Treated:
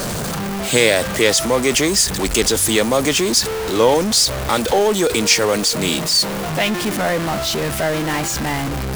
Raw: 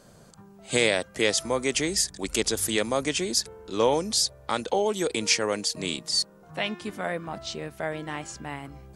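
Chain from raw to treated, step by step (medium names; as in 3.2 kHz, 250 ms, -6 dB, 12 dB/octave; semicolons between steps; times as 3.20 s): jump at every zero crossing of -24.5 dBFS; trim +6.5 dB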